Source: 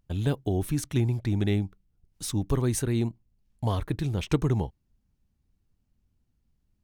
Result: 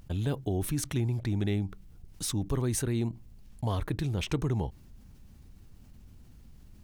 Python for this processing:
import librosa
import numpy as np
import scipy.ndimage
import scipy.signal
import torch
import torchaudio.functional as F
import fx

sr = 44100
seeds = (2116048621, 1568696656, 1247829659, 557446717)

y = fx.env_flatten(x, sr, amount_pct=50)
y = y * 10.0 ** (-6.5 / 20.0)